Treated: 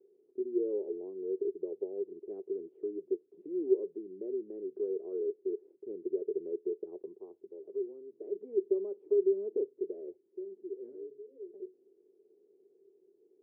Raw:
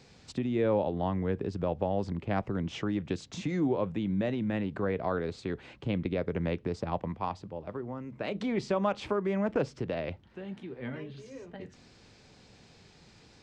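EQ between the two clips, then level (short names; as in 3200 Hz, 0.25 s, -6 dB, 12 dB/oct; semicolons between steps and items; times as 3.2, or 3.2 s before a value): Butterworth band-pass 390 Hz, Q 5.5; +5.5 dB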